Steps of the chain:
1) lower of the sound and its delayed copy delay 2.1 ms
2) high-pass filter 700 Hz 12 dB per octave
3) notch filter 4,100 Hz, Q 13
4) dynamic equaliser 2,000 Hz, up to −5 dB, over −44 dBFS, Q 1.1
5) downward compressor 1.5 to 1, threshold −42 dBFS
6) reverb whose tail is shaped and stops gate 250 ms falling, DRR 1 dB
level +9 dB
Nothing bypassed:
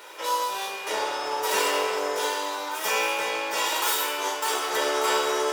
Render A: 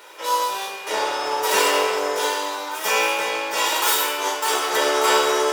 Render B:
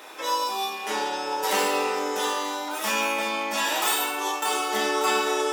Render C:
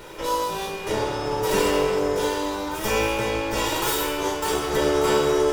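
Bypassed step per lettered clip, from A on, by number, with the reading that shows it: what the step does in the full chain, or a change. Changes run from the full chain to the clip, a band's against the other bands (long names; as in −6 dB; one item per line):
5, average gain reduction 4.0 dB
1, 250 Hz band +5.5 dB
2, 250 Hz band +13.5 dB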